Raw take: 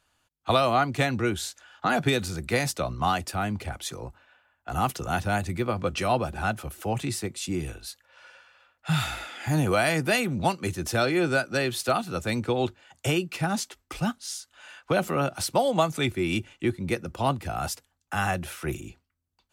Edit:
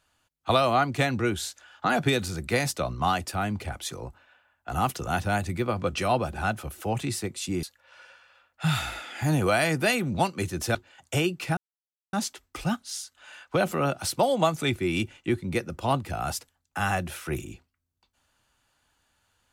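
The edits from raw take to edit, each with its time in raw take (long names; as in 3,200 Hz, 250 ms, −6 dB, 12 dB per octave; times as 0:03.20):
0:07.63–0:07.88: remove
0:11.00–0:12.67: remove
0:13.49: splice in silence 0.56 s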